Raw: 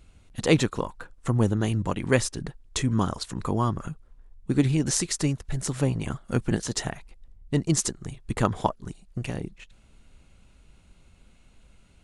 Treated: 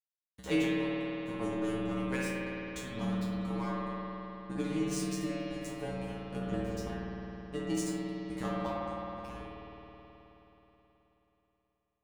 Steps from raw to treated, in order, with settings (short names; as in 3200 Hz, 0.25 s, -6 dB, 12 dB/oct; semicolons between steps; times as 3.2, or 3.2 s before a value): 6.52–6.92 tilt shelf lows +4.5 dB, about 1100 Hz; crossover distortion -31.5 dBFS; resonator 63 Hz, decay 0.36 s, harmonics odd, mix 100%; spring tank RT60 3.8 s, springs 53 ms, chirp 60 ms, DRR -5 dB